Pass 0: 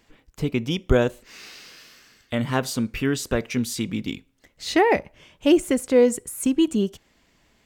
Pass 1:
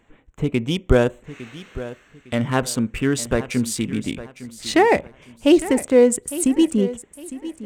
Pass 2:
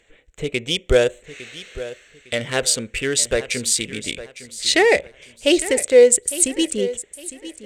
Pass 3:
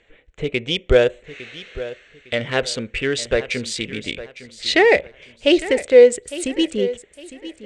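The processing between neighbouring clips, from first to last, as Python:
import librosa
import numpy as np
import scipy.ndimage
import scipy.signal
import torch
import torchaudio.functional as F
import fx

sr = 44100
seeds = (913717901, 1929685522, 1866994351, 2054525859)

y1 = fx.wiener(x, sr, points=9)
y1 = fx.peak_eq(y1, sr, hz=8400.0, db=8.0, octaves=0.47)
y1 = fx.echo_feedback(y1, sr, ms=857, feedback_pct=30, wet_db=-15)
y1 = F.gain(torch.from_numpy(y1), 3.0).numpy()
y2 = fx.graphic_eq(y1, sr, hz=(125, 250, 500, 1000, 2000, 4000, 8000), db=(-5, -9, 9, -10, 7, 9, 10))
y2 = F.gain(torch.from_numpy(y2), -2.0).numpy()
y3 = scipy.signal.sosfilt(scipy.signal.butter(2, 3700.0, 'lowpass', fs=sr, output='sos'), y2)
y3 = F.gain(torch.from_numpy(y3), 1.5).numpy()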